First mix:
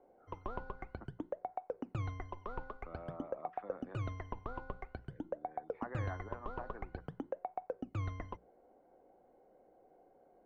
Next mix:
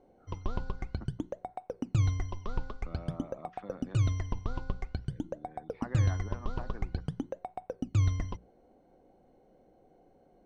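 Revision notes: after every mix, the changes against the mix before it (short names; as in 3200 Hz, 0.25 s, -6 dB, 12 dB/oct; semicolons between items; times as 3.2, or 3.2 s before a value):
master: remove three-band isolator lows -13 dB, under 350 Hz, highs -21 dB, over 2200 Hz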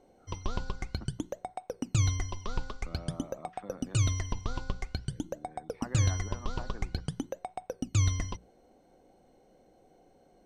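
background: remove LPF 1300 Hz 6 dB/oct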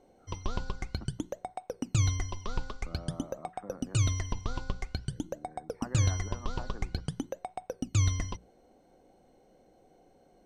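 speech: add LPF 1800 Hz 24 dB/oct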